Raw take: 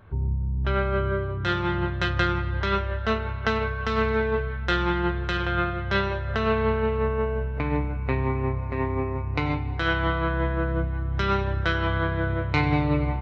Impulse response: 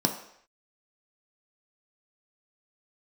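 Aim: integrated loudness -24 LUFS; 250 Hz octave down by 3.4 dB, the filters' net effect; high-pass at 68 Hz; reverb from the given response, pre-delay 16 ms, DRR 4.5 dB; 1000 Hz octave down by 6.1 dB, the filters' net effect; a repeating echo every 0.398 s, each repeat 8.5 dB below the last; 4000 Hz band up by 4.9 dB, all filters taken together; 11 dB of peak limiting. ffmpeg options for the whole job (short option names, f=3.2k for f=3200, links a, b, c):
-filter_complex "[0:a]highpass=68,equalizer=f=250:t=o:g=-4.5,equalizer=f=1k:t=o:g=-9,equalizer=f=4k:t=o:g=7,alimiter=limit=-19.5dB:level=0:latency=1,aecho=1:1:398|796|1194|1592:0.376|0.143|0.0543|0.0206,asplit=2[a][b];[1:a]atrim=start_sample=2205,adelay=16[c];[b][c]afir=irnorm=-1:irlink=0,volume=-14.5dB[d];[a][d]amix=inputs=2:normalize=0,volume=2.5dB"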